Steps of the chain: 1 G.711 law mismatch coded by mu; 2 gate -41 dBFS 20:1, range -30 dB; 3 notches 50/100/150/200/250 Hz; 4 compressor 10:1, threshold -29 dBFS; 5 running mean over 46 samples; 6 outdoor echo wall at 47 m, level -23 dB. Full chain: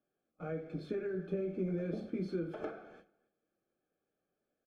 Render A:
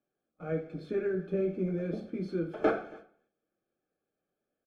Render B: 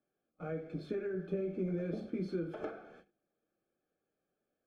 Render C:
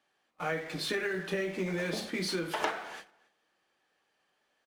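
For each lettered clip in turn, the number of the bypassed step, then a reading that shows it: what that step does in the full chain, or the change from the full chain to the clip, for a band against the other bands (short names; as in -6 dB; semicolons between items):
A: 4, mean gain reduction 4.0 dB; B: 6, echo-to-direct -24.0 dB to none; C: 5, 4 kHz band +21.0 dB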